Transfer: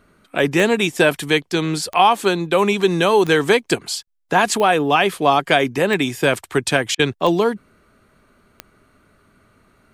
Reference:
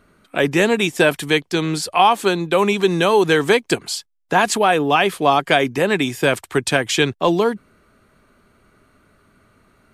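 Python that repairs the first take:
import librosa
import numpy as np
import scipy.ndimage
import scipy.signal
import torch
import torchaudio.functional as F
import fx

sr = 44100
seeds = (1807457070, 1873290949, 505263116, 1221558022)

y = fx.fix_declick_ar(x, sr, threshold=10.0)
y = fx.fix_interpolate(y, sr, at_s=(4.03, 6.95), length_ms=41.0)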